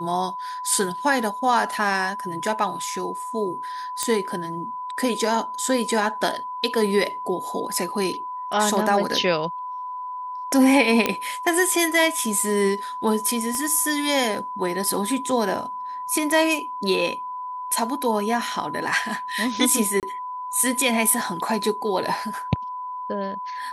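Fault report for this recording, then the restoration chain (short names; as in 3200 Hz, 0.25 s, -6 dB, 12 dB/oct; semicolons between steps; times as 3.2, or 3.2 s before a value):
tone 1000 Hz -29 dBFS
4.03 pop -7 dBFS
11.06 pop -5 dBFS
13.55 pop -17 dBFS
20–20.03 gap 28 ms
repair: de-click; notch 1000 Hz, Q 30; interpolate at 20, 28 ms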